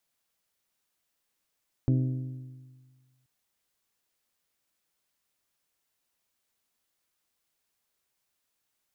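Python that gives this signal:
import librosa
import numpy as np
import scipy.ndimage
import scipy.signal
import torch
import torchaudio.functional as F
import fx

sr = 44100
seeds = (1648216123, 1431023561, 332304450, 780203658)

y = fx.strike_metal(sr, length_s=1.38, level_db=-20, body='bell', hz=129.0, decay_s=1.63, tilt_db=6.0, modes=6)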